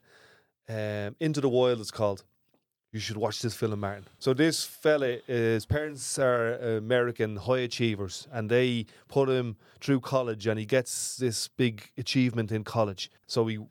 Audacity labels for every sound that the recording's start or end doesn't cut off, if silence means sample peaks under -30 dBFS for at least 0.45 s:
0.700000	2.150000	sound